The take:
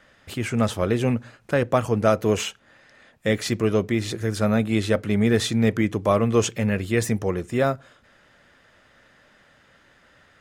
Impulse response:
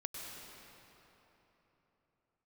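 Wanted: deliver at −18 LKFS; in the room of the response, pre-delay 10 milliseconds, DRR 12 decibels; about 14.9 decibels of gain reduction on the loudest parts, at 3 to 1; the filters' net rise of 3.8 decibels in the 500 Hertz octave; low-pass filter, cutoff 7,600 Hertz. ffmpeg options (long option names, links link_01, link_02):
-filter_complex "[0:a]lowpass=7600,equalizer=frequency=500:width_type=o:gain=4.5,acompressor=threshold=-33dB:ratio=3,asplit=2[link_01][link_02];[1:a]atrim=start_sample=2205,adelay=10[link_03];[link_02][link_03]afir=irnorm=-1:irlink=0,volume=-11.5dB[link_04];[link_01][link_04]amix=inputs=2:normalize=0,volume=15.5dB"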